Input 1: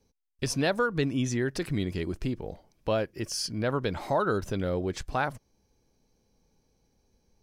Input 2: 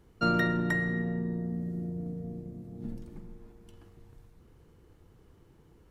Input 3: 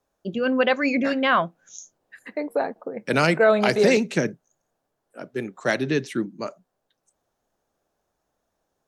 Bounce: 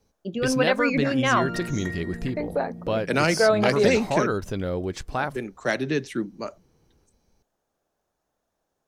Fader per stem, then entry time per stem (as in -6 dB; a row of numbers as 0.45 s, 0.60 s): +1.5 dB, -5.5 dB, -2.0 dB; 0.00 s, 1.15 s, 0.00 s